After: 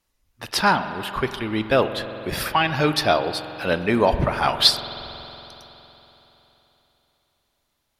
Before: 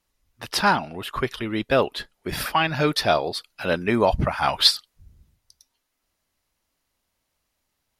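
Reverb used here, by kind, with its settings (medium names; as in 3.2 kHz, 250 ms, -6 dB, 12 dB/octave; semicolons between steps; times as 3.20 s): spring tank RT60 3.7 s, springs 46 ms, chirp 20 ms, DRR 10 dB; trim +1 dB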